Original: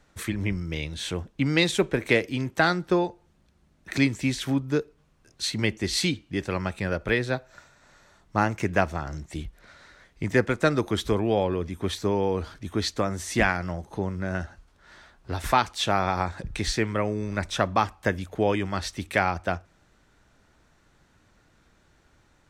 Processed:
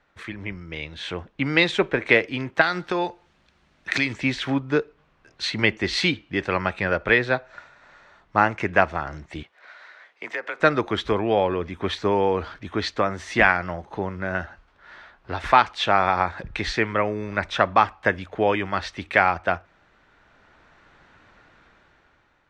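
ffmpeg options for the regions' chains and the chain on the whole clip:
-filter_complex "[0:a]asettb=1/sr,asplit=3[a][b][c];[a]atrim=end=2.614[d];[b]atrim=start=2.61:end=4.13,asetpts=PTS-STARTPTS,afade=t=in:d=0.004:c=qsin,afade=t=out:st=1.516:d=0.004:c=qsin,highshelf=f=2.7k:g=12,acompressor=threshold=-22dB:ratio=6:attack=3.2:release=140:knee=1:detection=peak[e];[c]atrim=start=4.126[f];[d][e]acrossfade=d=0.004:c1=hsin:c2=qsin[g];[g][f]acrossfade=d=0.004:c1=qsin:c2=hsin,asettb=1/sr,asplit=3[h][i][j];[h]atrim=end=9.434[k];[i]atrim=start=9.43:end=10.6,asetpts=PTS-STARTPTS,afade=t=in:d=0.004:c=qsin,afade=t=out:st=1.166:d=0.004:c=qsin,highpass=500,afreqshift=32,acompressor=threshold=-32dB:ratio=4:attack=3.2:release=140:knee=1:detection=peak[l];[j]atrim=start=10.596[m];[k][l]acrossfade=d=0.004:c1=hsin:c2=qsin[n];[n][m]acrossfade=d=0.004:c1=qsin:c2=hsin,dynaudnorm=f=220:g=9:m=11.5dB,lowpass=2.7k,lowshelf=f=430:g=-12,volume=2dB"

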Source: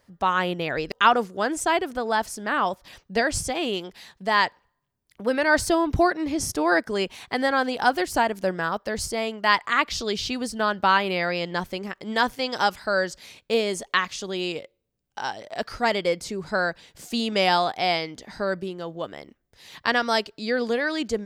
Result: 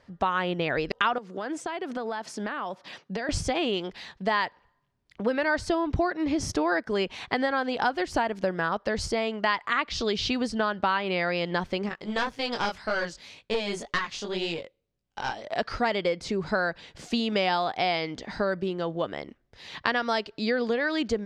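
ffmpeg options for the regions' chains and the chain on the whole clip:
-filter_complex "[0:a]asettb=1/sr,asplit=3[a][b][c];[a]atrim=end=1.184[d];[b]atrim=start=1.18:end=3.29,asetpts=PTS-STARTPTS,afade=t=in:d=0.004:c=qsin,afade=t=out:st=2.106:d=0.004:c=qsin,highpass=f=150:w=0.5412,highpass=f=150:w=1.3066,acompressor=threshold=-32dB:ratio=12:attack=3.2:release=140:knee=1:detection=peak[e];[c]atrim=start=3.286[f];[d][e]acrossfade=d=0.004:c1=hsin:c2=qsin[g];[g][f]acrossfade=d=0.004:c1=qsin:c2=hsin,asettb=1/sr,asplit=3[h][i][j];[h]atrim=end=11.894[k];[i]atrim=start=11.89:end=15.45,asetpts=PTS-STARTPTS,afade=t=in:d=0.004:c=qsin,afade=t=out:st=3.556:d=0.004:c=qsin,flanger=delay=18:depth=6.1:speed=1.9,aeval=exprs='(tanh(8.91*val(0)+0.6)-tanh(0.6))/8.91':c=same,highshelf=f=6.2k:g=7.5[l];[j]atrim=start=15.446[m];[k][l]acrossfade=d=0.004:c1=hsin:c2=qsin[n];[n][m]acrossfade=d=0.004:c1=qsin:c2=hsin,lowpass=4.5k,acompressor=threshold=-28dB:ratio=4,volume=4.5dB"

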